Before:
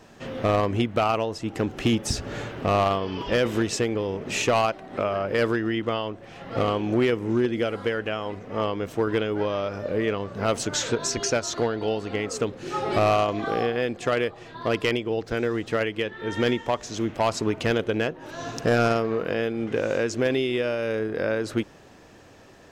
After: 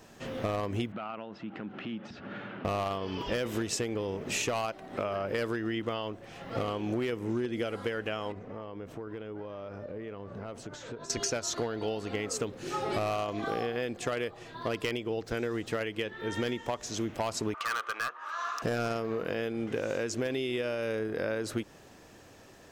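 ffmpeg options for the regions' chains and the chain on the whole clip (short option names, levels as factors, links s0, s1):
-filter_complex "[0:a]asettb=1/sr,asplit=3[s0][s1][s2];[s0]atrim=end=0.924[s3];[s1]atrim=start=0.92:end=2.65,asetpts=PTS-STARTPTS,afade=t=in:d=0.004:c=qsin,afade=t=out:st=1.726:d=0.004:c=qsin,acompressor=threshold=0.02:ratio=4:attack=3.2:release=140:knee=1:detection=peak,highpass=170,equalizer=f=200:t=q:w=4:g=10,equalizer=f=450:t=q:w=4:g=-5,equalizer=f=1400:t=q:w=4:g=6,lowpass=f=3300:w=0.5412,lowpass=f=3300:w=1.3066[s4];[s2]atrim=start=2.646[s5];[s3][s4]acrossfade=d=0.004:c1=hsin:c2=qsin[s6];[s6][s5]acrossfade=d=0.004:c1=qsin:c2=hsin,asettb=1/sr,asplit=3[s7][s8][s9];[s7]atrim=end=8.324[s10];[s8]atrim=start=8.32:end=11.1,asetpts=PTS-STARTPTS,afade=t=in:d=0.004:c=qsin,afade=t=out:st=2.776:d=0.004:c=qsin,acompressor=threshold=0.0224:ratio=5:attack=3.2:release=140:knee=1:detection=peak,lowpass=f=1400:p=1[s11];[s9]atrim=start=11.096[s12];[s10][s11]acrossfade=d=0.004:c1=hsin:c2=qsin[s13];[s13][s12]acrossfade=d=0.004:c1=qsin:c2=hsin,asettb=1/sr,asplit=3[s14][s15][s16];[s14]atrim=end=17.544[s17];[s15]atrim=start=17.54:end=18.62,asetpts=PTS-STARTPTS,afade=t=in:d=0.004:c=qsin,afade=t=out:st=1.076:d=0.004:c=qsin,highpass=f=1200:t=q:w=14,aemphasis=mode=reproduction:type=50fm,volume=11.2,asoftclip=hard,volume=0.0891[s18];[s16]atrim=start=18.616[s19];[s17][s18]acrossfade=d=0.004:c1=hsin:c2=qsin[s20];[s20][s19]acrossfade=d=0.004:c1=qsin:c2=hsin,highshelf=f=8000:g=10.5,acompressor=threshold=0.0631:ratio=6,volume=0.631"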